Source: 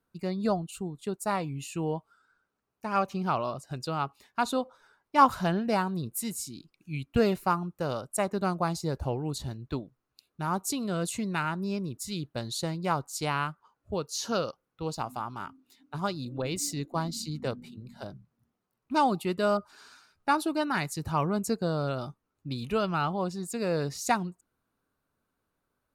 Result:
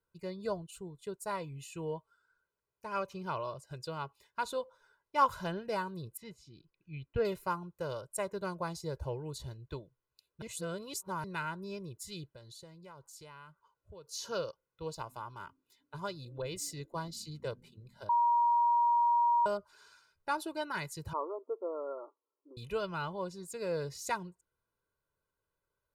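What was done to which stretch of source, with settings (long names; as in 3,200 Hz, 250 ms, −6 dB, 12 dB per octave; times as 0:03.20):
0:06.17–0:07.25: high-frequency loss of the air 240 metres
0:10.42–0:11.24: reverse
0:12.33–0:14.07: downward compressor 4 to 1, threshold −43 dBFS
0:18.09–0:19.46: beep over 949 Hz −19 dBFS
0:21.13–0:22.57: linear-phase brick-wall band-pass 260–1,400 Hz
whole clip: comb filter 2 ms, depth 71%; level −9 dB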